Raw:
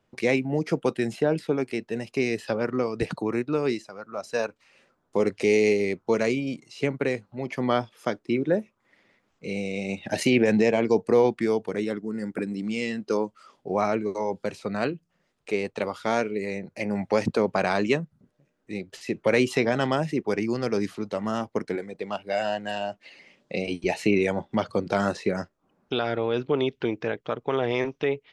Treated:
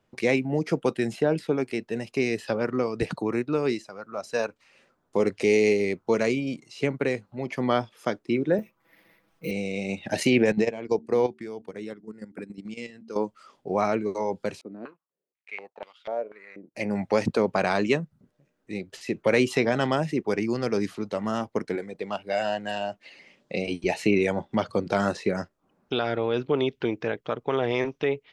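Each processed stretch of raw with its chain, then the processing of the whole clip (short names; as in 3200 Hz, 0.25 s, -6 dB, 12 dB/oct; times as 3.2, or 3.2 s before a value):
8.58–9.51 comb 6.1 ms, depth 100% + careless resampling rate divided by 3×, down filtered, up hold
10.52–13.16 de-hum 75.58 Hz, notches 5 + level quantiser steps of 10 dB + upward expander, over -35 dBFS
14.61–16.75 G.711 law mismatch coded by A + stepped band-pass 4.1 Hz 300–3000 Hz
whole clip: dry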